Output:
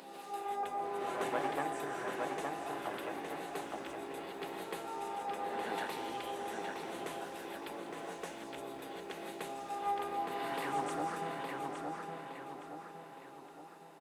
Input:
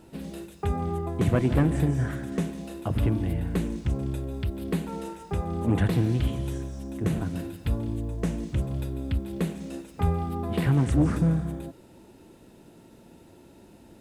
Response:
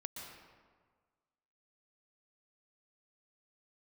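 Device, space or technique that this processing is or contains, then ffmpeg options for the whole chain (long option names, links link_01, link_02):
ghost voice: -filter_complex "[0:a]equalizer=frequency=100:width_type=o:width=0.33:gain=-11,equalizer=frequency=400:width_type=o:width=0.33:gain=6,equalizer=frequency=800:width_type=o:width=0.33:gain=8,areverse[link_01];[1:a]atrim=start_sample=2205[link_02];[link_01][link_02]afir=irnorm=-1:irlink=0,areverse,highpass=710,asplit=2[link_03][link_04];[link_04]adelay=865,lowpass=frequency=4500:poles=1,volume=-3dB,asplit=2[link_05][link_06];[link_06]adelay=865,lowpass=frequency=4500:poles=1,volume=0.49,asplit=2[link_07][link_08];[link_08]adelay=865,lowpass=frequency=4500:poles=1,volume=0.49,asplit=2[link_09][link_10];[link_10]adelay=865,lowpass=frequency=4500:poles=1,volume=0.49,asplit=2[link_11][link_12];[link_12]adelay=865,lowpass=frequency=4500:poles=1,volume=0.49,asplit=2[link_13][link_14];[link_14]adelay=865,lowpass=frequency=4500:poles=1,volume=0.49[link_15];[link_03][link_05][link_07][link_09][link_11][link_13][link_15]amix=inputs=7:normalize=0,volume=-1.5dB"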